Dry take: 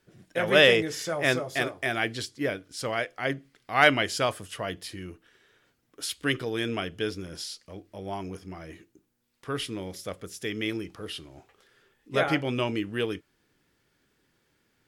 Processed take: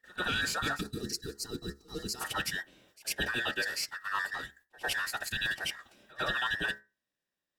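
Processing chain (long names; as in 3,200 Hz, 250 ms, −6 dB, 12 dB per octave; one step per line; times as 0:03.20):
frequency inversion band by band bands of 2,000 Hz
noise gate with hold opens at −56 dBFS
parametric band 1,600 Hz −6.5 dB 0.44 octaves
hum removal 69.86 Hz, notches 31
leveller curve on the samples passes 1
brickwall limiter −15.5 dBFS, peak gain reduction 9 dB
reversed playback
downward compressor 10 to 1, threshold −34 dBFS, peak gain reduction 13.5 dB
reversed playback
phase-vocoder stretch with locked phases 0.51×
echo ahead of the sound 102 ms −22.5 dB
gain on a spectral selection 0:00.81–0:02.21, 490–3,900 Hz −19 dB
level +7 dB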